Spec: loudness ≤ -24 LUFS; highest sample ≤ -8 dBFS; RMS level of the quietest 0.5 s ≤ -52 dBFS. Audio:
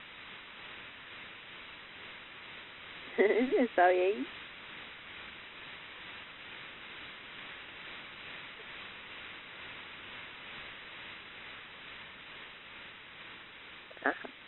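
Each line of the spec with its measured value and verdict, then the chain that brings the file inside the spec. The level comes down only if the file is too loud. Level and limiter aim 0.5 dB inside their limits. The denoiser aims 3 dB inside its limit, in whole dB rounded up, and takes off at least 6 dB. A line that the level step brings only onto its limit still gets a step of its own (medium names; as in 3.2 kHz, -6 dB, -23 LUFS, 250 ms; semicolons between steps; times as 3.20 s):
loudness -38.0 LUFS: pass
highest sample -14.0 dBFS: pass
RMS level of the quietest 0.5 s -51 dBFS: fail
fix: noise reduction 6 dB, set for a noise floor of -51 dBFS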